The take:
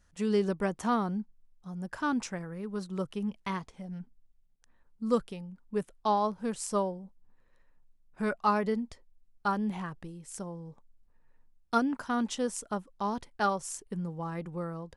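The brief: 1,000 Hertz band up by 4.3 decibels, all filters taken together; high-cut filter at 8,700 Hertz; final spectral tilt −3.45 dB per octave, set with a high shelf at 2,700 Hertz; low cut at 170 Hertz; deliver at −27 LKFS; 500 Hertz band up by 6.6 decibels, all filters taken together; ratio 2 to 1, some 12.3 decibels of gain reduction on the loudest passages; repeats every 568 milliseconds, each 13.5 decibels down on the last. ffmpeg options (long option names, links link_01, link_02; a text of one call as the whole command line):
ffmpeg -i in.wav -af "highpass=170,lowpass=8700,equalizer=frequency=500:width_type=o:gain=7.5,equalizer=frequency=1000:width_type=o:gain=4,highshelf=frequency=2700:gain=-6,acompressor=threshold=-38dB:ratio=2,aecho=1:1:568|1136:0.211|0.0444,volume=11dB" out.wav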